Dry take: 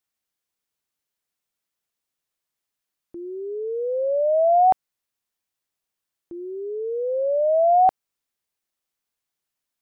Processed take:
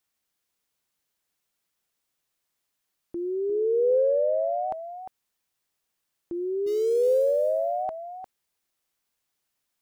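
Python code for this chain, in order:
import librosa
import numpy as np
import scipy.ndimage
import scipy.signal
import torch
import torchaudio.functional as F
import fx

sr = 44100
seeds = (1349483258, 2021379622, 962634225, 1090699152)

y = fx.sample_gate(x, sr, floor_db=-40.0, at=(6.66, 7.5), fade=0.02)
y = fx.over_compress(y, sr, threshold_db=-24.0, ratio=-1.0)
y = y + 10.0 ** (-9.5 / 20.0) * np.pad(y, (int(352 * sr / 1000.0), 0))[:len(y)]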